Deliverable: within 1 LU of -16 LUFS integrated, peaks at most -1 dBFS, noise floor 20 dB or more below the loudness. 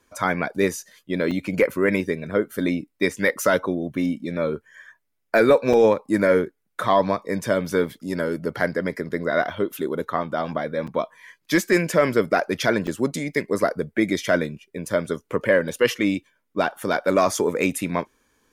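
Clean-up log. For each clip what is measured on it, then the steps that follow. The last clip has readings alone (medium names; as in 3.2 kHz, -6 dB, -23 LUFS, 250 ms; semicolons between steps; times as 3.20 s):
dropouts 4; longest dropout 5.3 ms; loudness -23.0 LUFS; peak level -6.5 dBFS; loudness target -16.0 LUFS
-> interpolate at 1.31/5.73/10.87/12.87 s, 5.3 ms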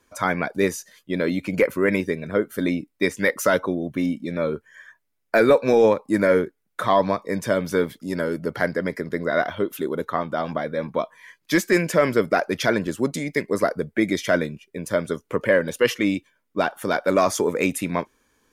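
dropouts 0; loudness -23.0 LUFS; peak level -6.5 dBFS; loudness target -16.0 LUFS
-> trim +7 dB; peak limiter -1 dBFS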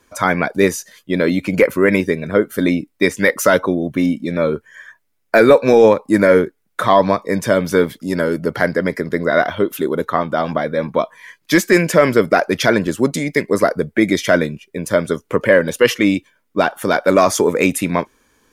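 loudness -16.5 LUFS; peak level -1.0 dBFS; noise floor -66 dBFS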